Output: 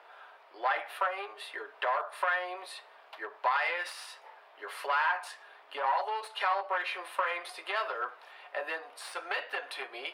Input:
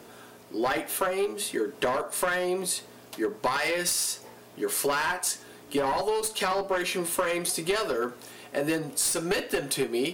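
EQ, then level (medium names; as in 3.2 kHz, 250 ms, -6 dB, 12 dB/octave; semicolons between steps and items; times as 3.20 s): high-pass 720 Hz 24 dB/octave; dynamic bell 9.4 kHz, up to +5 dB, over -45 dBFS, Q 2.4; distance through air 420 m; +2.5 dB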